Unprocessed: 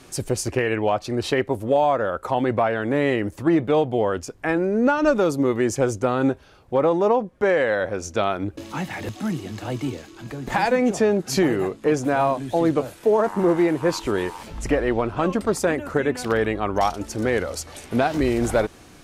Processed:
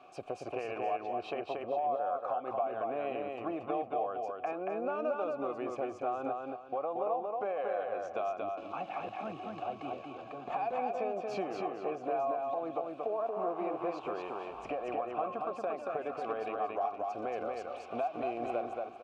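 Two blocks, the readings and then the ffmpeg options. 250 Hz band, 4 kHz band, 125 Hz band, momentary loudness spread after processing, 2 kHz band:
-20.0 dB, -20.0 dB, -26.5 dB, 6 LU, -19.0 dB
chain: -filter_complex "[0:a]asplit=3[a][b][c];[a]bandpass=f=730:t=q:w=8,volume=0dB[d];[b]bandpass=f=1.09k:t=q:w=8,volume=-6dB[e];[c]bandpass=f=2.44k:t=q:w=8,volume=-9dB[f];[d][e][f]amix=inputs=3:normalize=0,asplit=2[g][h];[h]alimiter=level_in=2dB:limit=-24dB:level=0:latency=1:release=122,volume=-2dB,volume=-1dB[i];[g][i]amix=inputs=2:normalize=0,acompressor=threshold=-36dB:ratio=2.5,aemphasis=mode=reproduction:type=50kf,aecho=1:1:230|460|690|920:0.708|0.205|0.0595|0.0173"

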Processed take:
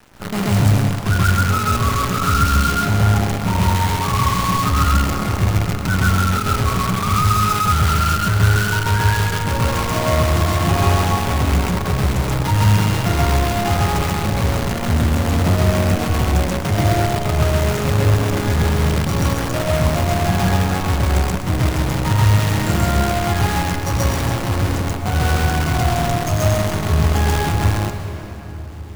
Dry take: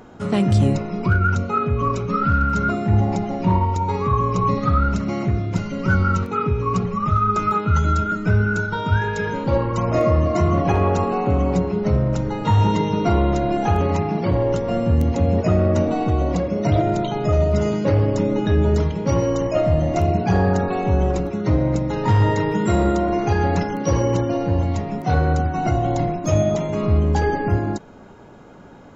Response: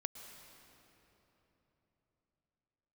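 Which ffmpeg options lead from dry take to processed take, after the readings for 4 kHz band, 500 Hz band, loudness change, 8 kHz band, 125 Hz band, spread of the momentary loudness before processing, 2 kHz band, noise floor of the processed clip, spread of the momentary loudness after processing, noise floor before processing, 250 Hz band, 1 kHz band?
+12.5 dB, -2.5 dB, +2.5 dB, n/a, +3.5 dB, 4 LU, +6.0 dB, -25 dBFS, 4 LU, -30 dBFS, -0.5 dB, +2.5 dB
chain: -filter_complex "[0:a]acontrast=59,equalizer=f=250:t=o:w=1:g=-5,equalizer=f=500:t=o:w=1:g=-10,equalizer=f=4k:t=o:w=1:g=-10,acrusher=bits=4:dc=4:mix=0:aa=0.000001,asplit=2[a][b];[1:a]atrim=start_sample=2205,adelay=133[c];[b][c]afir=irnorm=-1:irlink=0,volume=4.5dB[d];[a][d]amix=inputs=2:normalize=0,volume=-5.5dB"

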